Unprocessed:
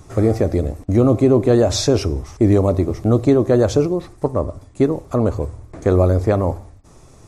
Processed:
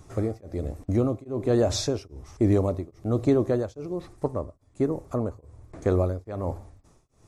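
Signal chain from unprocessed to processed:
0:04.42–0:05.45: dynamic equaliser 3,300 Hz, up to −8 dB, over −49 dBFS, Q 1.4
tremolo along a rectified sine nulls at 1.2 Hz
level −7 dB

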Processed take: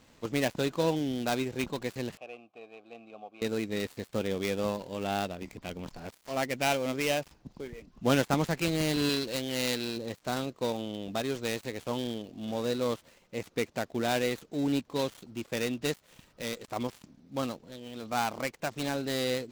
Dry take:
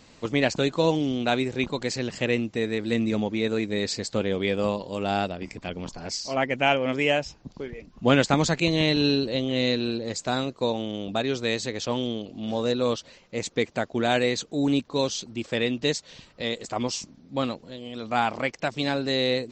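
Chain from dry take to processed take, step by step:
gap after every zero crossing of 0.12 ms
0:02.17–0:03.42: formant filter a
0:09.09–0:09.97: tilt shelving filter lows −4 dB, about 690 Hz
level −5.5 dB

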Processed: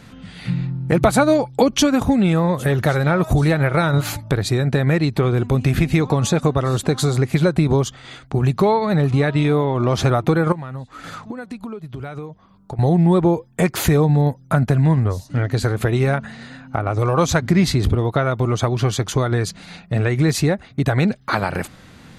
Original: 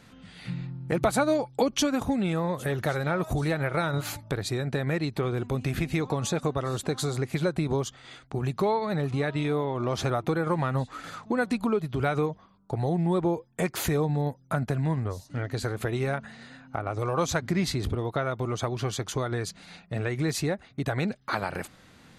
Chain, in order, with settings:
bass and treble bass +4 dB, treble −1 dB
0:10.52–0:12.79: downward compressor 6 to 1, threshold −38 dBFS, peak gain reduction 17 dB
level +8.5 dB

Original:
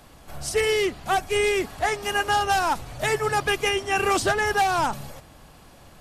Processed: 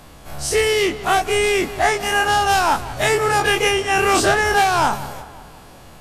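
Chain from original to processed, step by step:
every bin's largest magnitude spread in time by 60 ms
feedback echo with a low-pass in the loop 182 ms, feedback 55%, low-pass 3,800 Hz, level −16.5 dB
level +2.5 dB

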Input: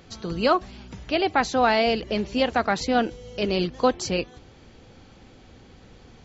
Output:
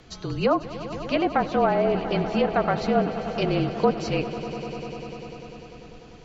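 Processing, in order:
treble cut that deepens with the level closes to 1,100 Hz, closed at −16.5 dBFS
frequency shifter −36 Hz
echo that builds up and dies away 99 ms, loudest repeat 5, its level −16 dB

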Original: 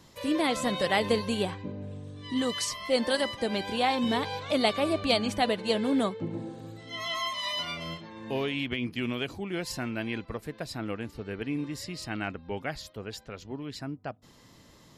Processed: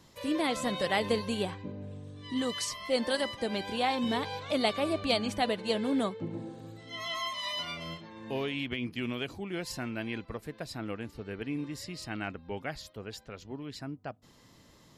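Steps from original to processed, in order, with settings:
level −3 dB

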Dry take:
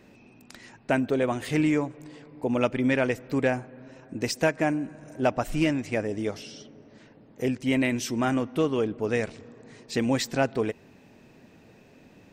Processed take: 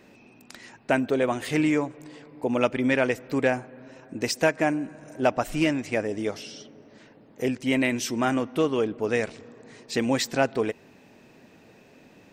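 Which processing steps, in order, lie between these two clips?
low-shelf EQ 170 Hz −8 dB
level +2.5 dB

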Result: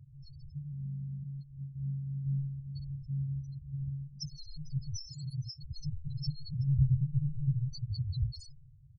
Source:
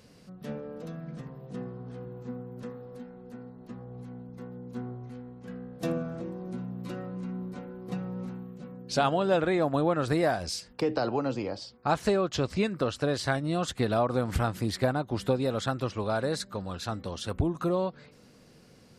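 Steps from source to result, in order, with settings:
each half-wave held at its own peak
high-shelf EQ 3,300 Hz +10 dB
mains-hum notches 50/100 Hz
single-tap delay 96 ms −19 dB
convolution reverb RT60 1.0 s, pre-delay 100 ms, DRR 12 dB
downward compressor 6 to 1, threshold −23 dBFS, peak gain reduction 9.5 dB
brick-wall band-stop 130–3,400 Hz
time stretch by phase vocoder 0.53×
parametric band 11,000 Hz −5.5 dB 2.8 octaves
comb filter 1.3 ms, depth 44%
spectral peaks only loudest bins 4
speed change +12%
level +5 dB

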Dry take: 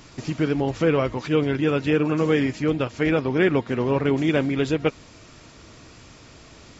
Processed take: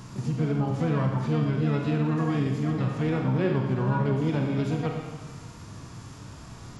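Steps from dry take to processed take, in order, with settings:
octave-band graphic EQ 125/500/1,000/2,000/4,000 Hz +10/−7/+7/−8/−3 dB
four-comb reverb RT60 1.1 s, combs from 31 ms, DRR 3.5 dB
downward compressor 1.5 to 1, threshold −36 dBFS, peak gain reduction 8 dB
pitch-shifted copies added +7 semitones −7 dB
harmonic and percussive parts rebalanced harmonic +6 dB
level −4.5 dB

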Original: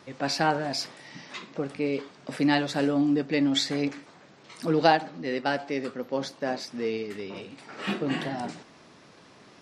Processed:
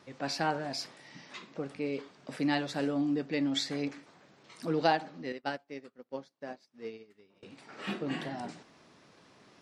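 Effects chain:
0:05.32–0:07.43: expander for the loud parts 2.5 to 1, over −43 dBFS
level −6.5 dB

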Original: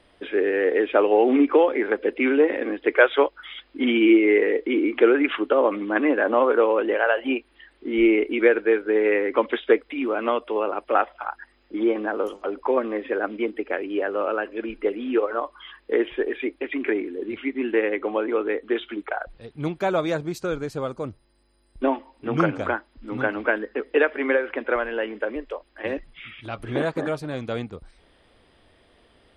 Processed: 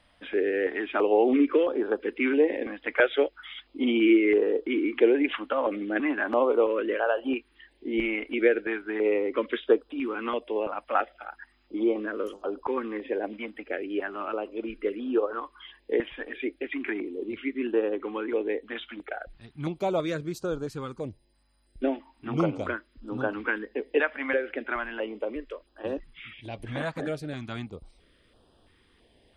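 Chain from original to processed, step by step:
notch on a step sequencer 3 Hz 390–2,100 Hz
level −3 dB

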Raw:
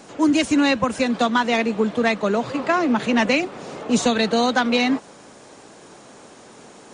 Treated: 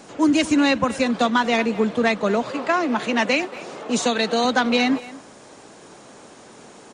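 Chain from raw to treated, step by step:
0:02.42–0:04.45: high-pass filter 300 Hz 6 dB per octave
far-end echo of a speakerphone 230 ms, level −16 dB

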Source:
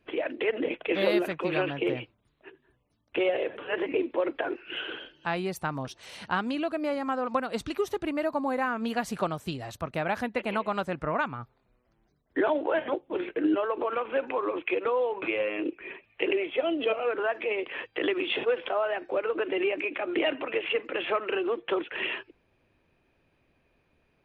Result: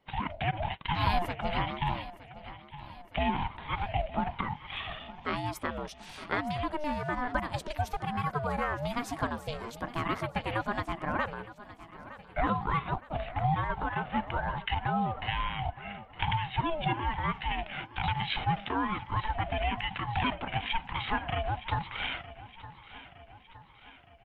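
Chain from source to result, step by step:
on a send: repeating echo 915 ms, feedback 54%, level −16 dB
on the sum: ring modulator whose carrier an LFO sweeps 400 Hz, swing 25%, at 1.1 Hz

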